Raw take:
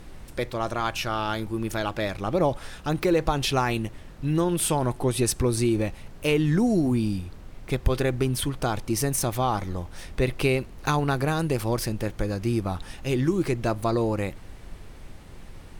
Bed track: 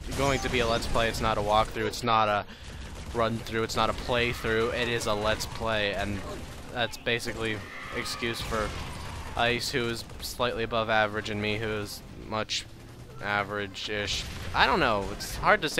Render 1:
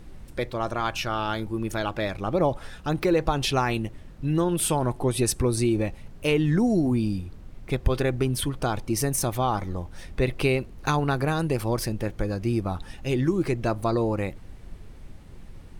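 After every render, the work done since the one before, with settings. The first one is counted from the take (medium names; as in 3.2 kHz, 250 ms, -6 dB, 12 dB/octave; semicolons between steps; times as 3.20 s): noise reduction 6 dB, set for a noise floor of -44 dBFS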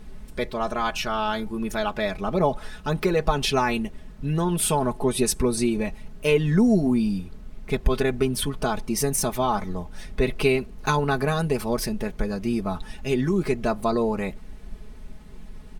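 comb 4.7 ms, depth 74%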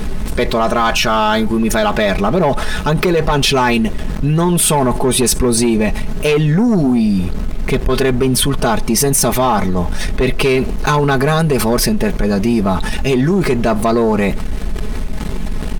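waveshaping leveller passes 2; level flattener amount 70%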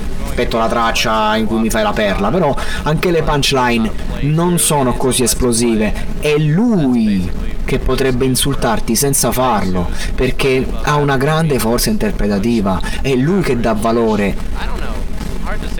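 add bed track -5 dB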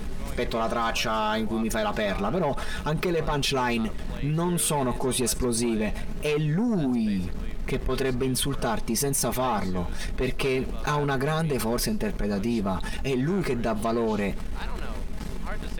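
trim -12 dB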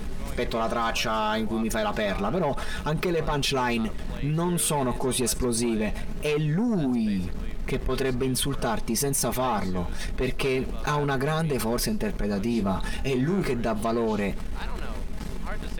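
12.51–13.51 s: doubling 31 ms -9 dB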